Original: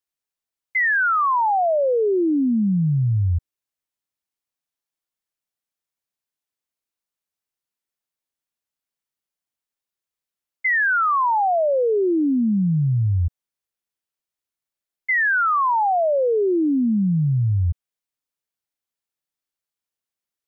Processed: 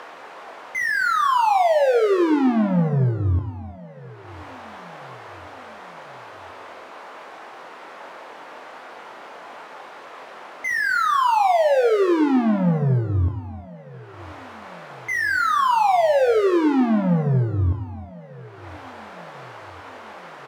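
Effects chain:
upward compression, threshold −31 dBFS
resonant band-pass 750 Hz, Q 0.7
mid-hump overdrive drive 39 dB, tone 1,100 Hz, clips at −15.5 dBFS
double-tracking delay 23 ms −6.5 dB
repeating echo 1,042 ms, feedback 47%, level −22 dB
reverb whose tail is shaped and stops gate 390 ms flat, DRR 10.5 dB
one half of a high-frequency compander decoder only
level +1.5 dB

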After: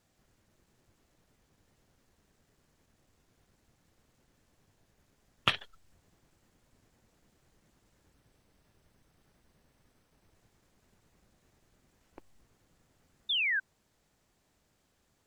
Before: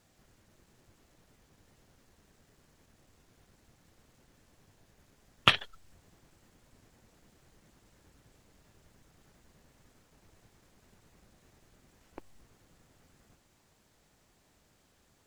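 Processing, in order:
0:08.13–0:10.35: notch filter 7,000 Hz, Q 7
0:13.29–0:13.60: sound drawn into the spectrogram fall 1,500–3,700 Hz −24 dBFS
level −5.5 dB

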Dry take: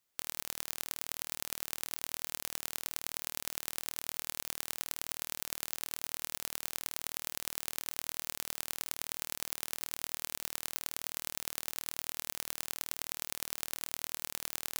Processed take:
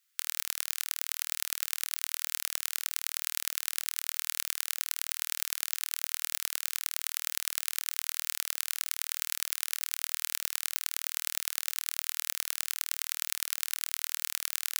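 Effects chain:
Butterworth high-pass 1,300 Hz 36 dB per octave
level +6 dB

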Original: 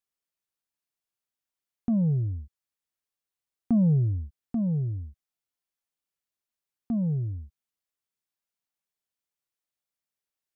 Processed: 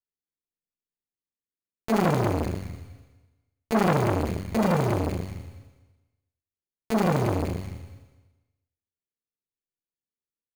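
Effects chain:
Butterworth low-pass 520 Hz 96 dB per octave
mains-hum notches 60/120/180/240 Hz
in parallel at −5 dB: fuzz pedal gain 48 dB, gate −47 dBFS
on the sum: decimation without filtering 20×
on a send: multi-tap delay 145/246 ms −19/−15 dB
on the sum: four-comb reverb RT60 1.1 s, combs from 32 ms, DRR 3 dB
saturating transformer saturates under 1,100 Hz
level −2 dB

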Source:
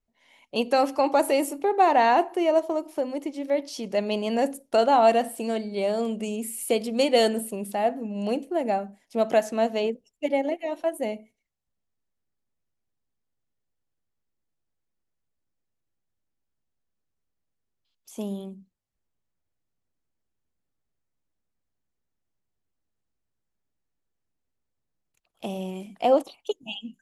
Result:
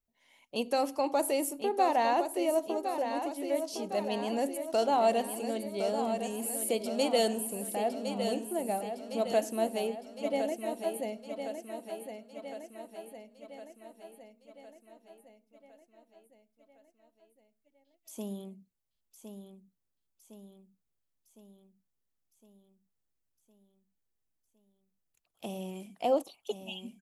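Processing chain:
high-shelf EQ 7,900 Hz +10 dB
on a send: repeating echo 1,060 ms, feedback 56%, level −8 dB
on the sum: dynamic equaliser 1,600 Hz, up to −4 dB, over −40 dBFS, Q 1.1
level −7 dB

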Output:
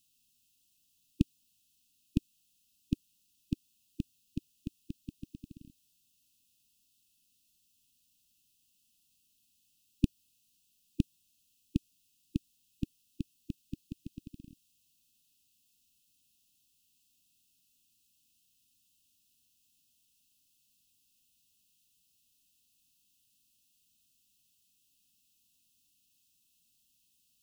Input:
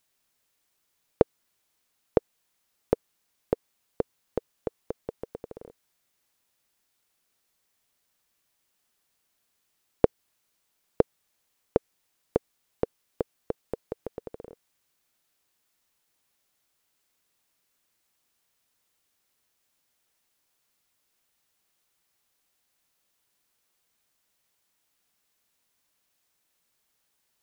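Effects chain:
linear-phase brick-wall band-stop 310–2,500 Hz
level +3 dB

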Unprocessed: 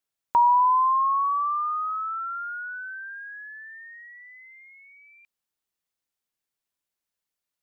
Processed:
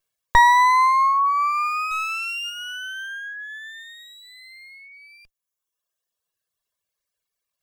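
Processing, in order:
lower of the sound and its delayed copy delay 1.8 ms
0:01.91–0:02.50: leveller curve on the samples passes 1
reverb reduction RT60 1.7 s
level +8.5 dB

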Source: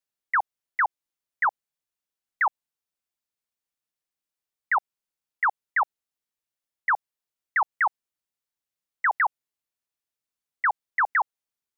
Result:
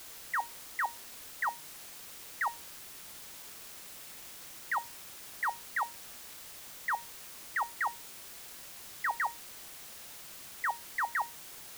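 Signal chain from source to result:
tuned comb filter 930 Hz, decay 0.25 s, mix 70%
bit-depth reduction 8 bits, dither triangular

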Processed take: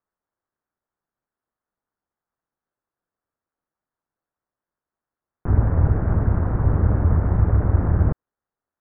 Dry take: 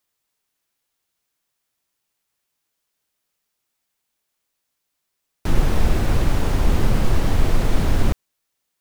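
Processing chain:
Butterworth low-pass 1,600 Hz 36 dB per octave
ring modulation 82 Hz

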